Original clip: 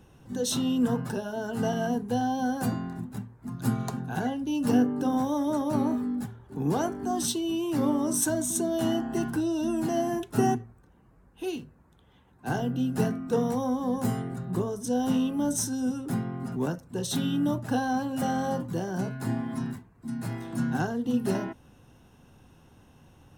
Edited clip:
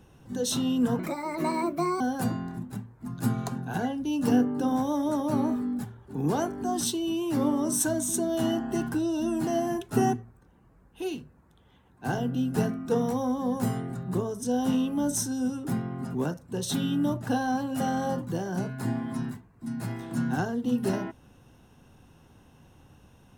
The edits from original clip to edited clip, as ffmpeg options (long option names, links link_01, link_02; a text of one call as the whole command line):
ffmpeg -i in.wav -filter_complex "[0:a]asplit=3[link_01][link_02][link_03];[link_01]atrim=end=0.994[link_04];[link_02]atrim=start=0.99:end=2.42,asetpts=PTS-STARTPTS,asetrate=62181,aresample=44100[link_05];[link_03]atrim=start=2.416[link_06];[link_04][link_05]acrossfade=duration=0.004:curve1=hsin:curve2=hsin[link_07];[link_07][link_06]acrossfade=duration=0.004:curve1=hsin:curve2=hsin" out.wav